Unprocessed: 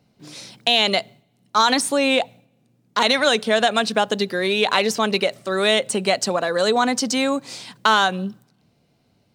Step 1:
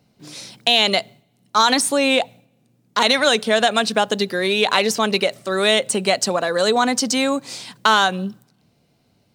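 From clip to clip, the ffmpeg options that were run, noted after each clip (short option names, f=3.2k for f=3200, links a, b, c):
-af "highshelf=f=6k:g=4,volume=1dB"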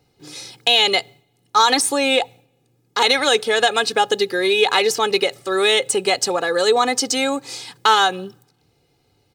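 -af "aecho=1:1:2.4:0.73,volume=-1dB"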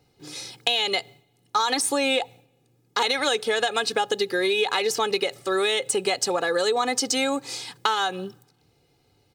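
-af "acompressor=threshold=-18dB:ratio=6,volume=-1.5dB"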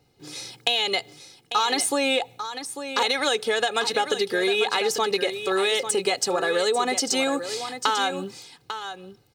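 -af "aecho=1:1:846:0.316"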